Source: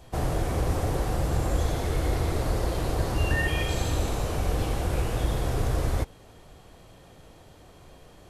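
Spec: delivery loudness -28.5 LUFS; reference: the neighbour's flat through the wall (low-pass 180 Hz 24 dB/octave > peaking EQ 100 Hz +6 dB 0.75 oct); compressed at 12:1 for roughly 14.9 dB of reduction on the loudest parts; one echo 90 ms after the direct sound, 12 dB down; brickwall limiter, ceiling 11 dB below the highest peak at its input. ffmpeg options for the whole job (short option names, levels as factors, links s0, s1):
-af "acompressor=threshold=0.0158:ratio=12,alimiter=level_in=4.22:limit=0.0631:level=0:latency=1,volume=0.237,lowpass=f=180:w=0.5412,lowpass=f=180:w=1.3066,equalizer=f=100:t=o:w=0.75:g=6,aecho=1:1:90:0.251,volume=7.94"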